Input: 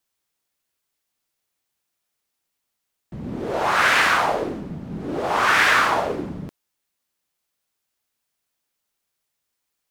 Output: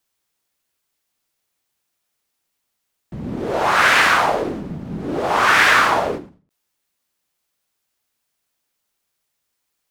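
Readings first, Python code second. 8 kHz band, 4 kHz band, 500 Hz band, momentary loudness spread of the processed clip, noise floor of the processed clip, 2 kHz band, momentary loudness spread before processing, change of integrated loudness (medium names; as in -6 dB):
+3.5 dB, +3.5 dB, +3.5 dB, 18 LU, -76 dBFS, +3.5 dB, 17 LU, +3.5 dB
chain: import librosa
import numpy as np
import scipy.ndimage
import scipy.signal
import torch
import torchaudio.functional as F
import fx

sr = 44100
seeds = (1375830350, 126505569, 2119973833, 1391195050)

y = fx.end_taper(x, sr, db_per_s=140.0)
y = y * 10.0 ** (3.5 / 20.0)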